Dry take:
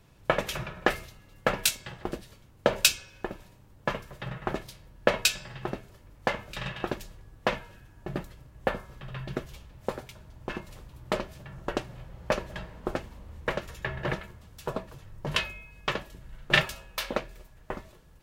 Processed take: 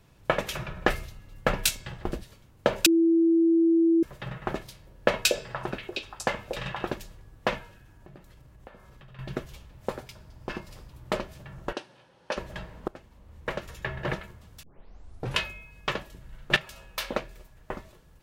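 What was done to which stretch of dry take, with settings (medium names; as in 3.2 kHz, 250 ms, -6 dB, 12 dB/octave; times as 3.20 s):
0.68–2.23 s: bass shelf 110 Hz +10.5 dB
2.86–4.03 s: bleep 331 Hz -17.5 dBFS
4.63–6.91 s: repeats whose band climbs or falls 237 ms, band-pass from 420 Hz, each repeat 1.4 oct, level -2 dB
7.69–9.19 s: compression 4:1, threshold -48 dBFS
10.06–10.91 s: peaking EQ 5 kHz +7.5 dB 0.23 oct
11.73–12.37 s: cabinet simulation 390–9200 Hz, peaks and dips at 420 Hz -4 dB, 670 Hz -9 dB, 1.2 kHz -7 dB, 2.1 kHz -7 dB, 7.3 kHz -9 dB
12.88–13.74 s: fade in, from -20 dB
14.63 s: tape start 0.76 s
16.56–16.97 s: compression 2.5:1, threshold -43 dBFS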